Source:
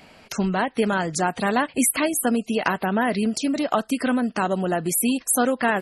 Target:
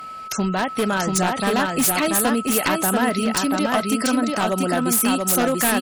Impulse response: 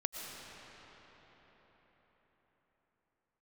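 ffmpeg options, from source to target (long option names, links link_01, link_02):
-filter_complex "[0:a]aemphasis=mode=production:type=cd,aeval=exprs='val(0)+0.0224*sin(2*PI*1300*n/s)':channel_layout=same,aeval=exprs='0.178*(abs(mod(val(0)/0.178+3,4)-2)-1)':channel_layout=same,asplit=2[link_01][link_02];[link_02]aecho=0:1:686:0.708[link_03];[link_01][link_03]amix=inputs=2:normalize=0,volume=1dB"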